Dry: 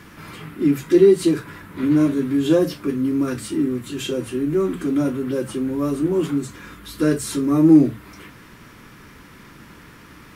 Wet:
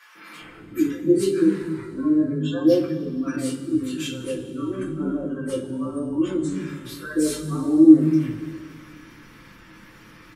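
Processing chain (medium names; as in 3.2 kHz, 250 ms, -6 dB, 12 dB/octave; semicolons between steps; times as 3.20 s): spectral gate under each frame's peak -30 dB strong; three bands offset in time highs, mids, lows 150/400 ms, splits 220/770 Hz; two-slope reverb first 0.29 s, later 2.5 s, from -18 dB, DRR -5 dB; trim -7.5 dB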